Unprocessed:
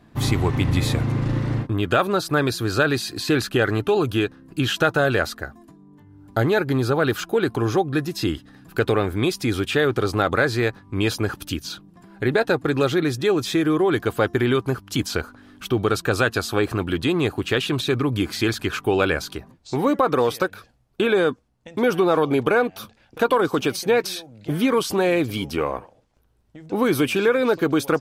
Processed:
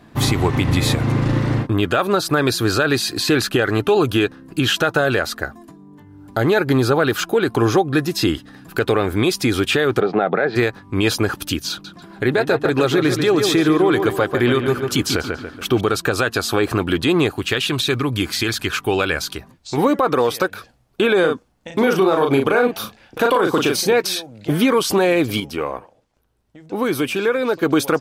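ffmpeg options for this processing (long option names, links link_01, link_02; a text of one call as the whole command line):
ffmpeg -i in.wav -filter_complex "[0:a]asplit=3[link_01][link_02][link_03];[link_01]afade=type=out:start_time=9.99:duration=0.02[link_04];[link_02]highpass=frequency=170:width=0.5412,highpass=frequency=170:width=1.3066,equalizer=frequency=180:width_type=q:width=4:gain=10,equalizer=frequency=280:width_type=q:width=4:gain=-4,equalizer=frequency=420:width_type=q:width=4:gain=4,equalizer=frequency=720:width_type=q:width=4:gain=9,equalizer=frequency=1100:width_type=q:width=4:gain=-7,equalizer=frequency=3000:width_type=q:width=4:gain=-5,lowpass=frequency=3100:width=0.5412,lowpass=frequency=3100:width=1.3066,afade=type=in:start_time=9.99:duration=0.02,afade=type=out:start_time=10.55:duration=0.02[link_05];[link_03]afade=type=in:start_time=10.55:duration=0.02[link_06];[link_04][link_05][link_06]amix=inputs=3:normalize=0,asettb=1/sr,asplit=3[link_07][link_08][link_09];[link_07]atrim=end=11.704[link_10];[link_08]atrim=start=11.7:end=15.81,asetpts=PTS-STARTPTS,afade=type=in:duration=0.004:curve=qsin,afade=type=out:start_time=4.106:duration=0.004:curve=qsin,asplit=2[link_11][link_12];[link_12]adelay=142,lowpass=frequency=3300:poles=1,volume=-7.5dB,asplit=2[link_13][link_14];[link_14]adelay=142,lowpass=frequency=3300:poles=1,volume=0.46,asplit=2[link_15][link_16];[link_16]adelay=142,lowpass=frequency=3300:poles=1,volume=0.46,asplit=2[link_17][link_18];[link_18]adelay=142,lowpass=frequency=3300:poles=1,volume=0.46,asplit=2[link_19][link_20];[link_20]adelay=142,lowpass=frequency=3300:poles=1,volume=0.46[link_21];[link_11][link_13][link_15][link_17][link_19][link_21]amix=inputs=6:normalize=0,atrim=end_sample=181251[link_22];[link_09]atrim=start=15.806[link_23];[link_10][link_22]acrossfade=duration=0.004:curve1=hsin:curve2=qsin[link_24];[link_24][link_23]acrossfade=duration=0.004:curve1=qsin:curve2=hsin,asettb=1/sr,asplit=3[link_25][link_26][link_27];[link_25]atrim=end=17.314[link_28];[link_26]atrim=start=17.31:end=19.78,asetpts=PTS-STARTPTS,afade=type=in:duration=0.004:curve=qsin,afade=type=out:start_time=2.466:duration=0.004:curve=qsin,equalizer=frequency=440:width=0.35:gain=-6[link_29];[link_27]atrim=start=19.776[link_30];[link_28][link_29]acrossfade=duration=0.004:curve1=hsin:curve2=qsin[link_31];[link_31][link_30]acrossfade=duration=0.004:curve1=qsin:curve2=hsin,asettb=1/sr,asplit=3[link_32][link_33][link_34];[link_32]atrim=end=21.204[link_35];[link_33]atrim=start=21.2:end=23.93,asetpts=PTS-STARTPTS,afade=type=in:duration=0.004:curve=qsin,afade=type=out:start_time=2.726:duration=0.004:curve=qsin,asplit=2[link_36][link_37];[link_37]adelay=37,volume=-4dB[link_38];[link_36][link_38]amix=inputs=2:normalize=0,atrim=end_sample=120393[link_39];[link_34]atrim=start=23.926[link_40];[link_35][link_39]acrossfade=duration=0.004:curve1=hsin:curve2=qsin[link_41];[link_41][link_40]acrossfade=duration=0.004:curve1=qsin:curve2=hsin,asplit=3[link_42][link_43][link_44];[link_42]atrim=end=25.402[link_45];[link_43]atrim=start=25.398:end=27.632,asetpts=PTS-STARTPTS,volume=-7dB[link_46];[link_44]atrim=start=27.628[link_47];[link_45][link_46]acrossfade=duration=0.004:curve1=hsin:curve2=hsin[link_48];[link_48][link_47]acrossfade=duration=0.004:curve1=hsin:curve2=hsin,lowshelf=frequency=170:gain=-5.5,alimiter=limit=-14.5dB:level=0:latency=1:release=125,volume=7.5dB" out.wav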